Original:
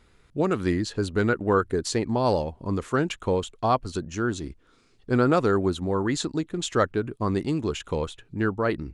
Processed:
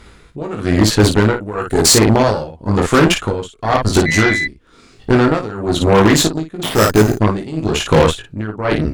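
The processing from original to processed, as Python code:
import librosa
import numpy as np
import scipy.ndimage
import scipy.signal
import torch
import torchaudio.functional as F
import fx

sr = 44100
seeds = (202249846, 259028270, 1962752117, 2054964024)

p1 = fx.high_shelf(x, sr, hz=4600.0, db=12.0, at=(1.35, 1.93))
p2 = fx.over_compress(p1, sr, threshold_db=-26.0, ratio=-0.5)
p3 = p1 + (p2 * 10.0 ** (-0.5 / 20.0))
p4 = fx.sample_hold(p3, sr, seeds[0], rate_hz=6600.0, jitter_pct=0, at=(6.63, 7.14))
p5 = fx.room_early_taps(p4, sr, ms=(19, 56), db=(-3.0, -5.0))
p6 = p5 * (1.0 - 0.86 / 2.0 + 0.86 / 2.0 * np.cos(2.0 * np.pi * 1.0 * (np.arange(len(p5)) / sr)))
p7 = fx.dmg_tone(p6, sr, hz=2000.0, level_db=-24.0, at=(4.05, 4.46), fade=0.02)
p8 = fx.cheby_harmonics(p7, sr, harmonics=(4,), levels_db=(-13,), full_scale_db=-12.0)
y = p8 * 10.0 ** (8.5 / 20.0)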